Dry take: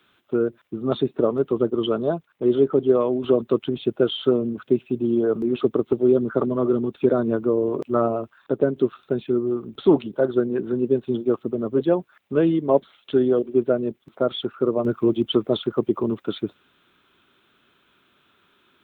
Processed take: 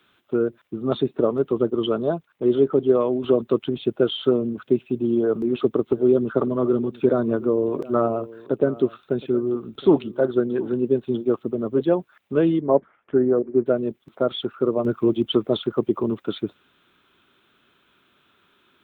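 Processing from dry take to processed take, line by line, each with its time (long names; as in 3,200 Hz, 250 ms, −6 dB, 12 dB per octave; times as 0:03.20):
0:05.19–0:10.77: single-tap delay 717 ms −19.5 dB
0:12.60–0:13.66: Butterworth low-pass 2,000 Hz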